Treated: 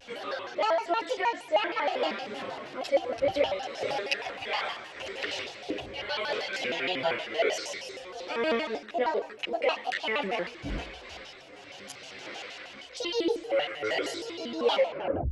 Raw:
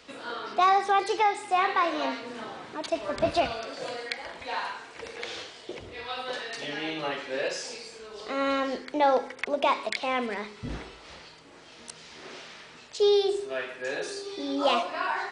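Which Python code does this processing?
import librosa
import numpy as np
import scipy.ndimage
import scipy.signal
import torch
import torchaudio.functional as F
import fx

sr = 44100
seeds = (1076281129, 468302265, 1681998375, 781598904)

y = fx.tape_stop_end(x, sr, length_s=0.56)
y = fx.graphic_eq_31(y, sr, hz=(200, 630, 1000, 2500, 8000), db=(-9, 9, -7, 8, -8))
y = fx.rider(y, sr, range_db=4, speed_s=0.5)
y = fx.chorus_voices(y, sr, voices=4, hz=0.22, base_ms=13, depth_ms=4.7, mix_pct=60)
y = fx.vibrato_shape(y, sr, shape='square', rate_hz=6.4, depth_cents=250.0)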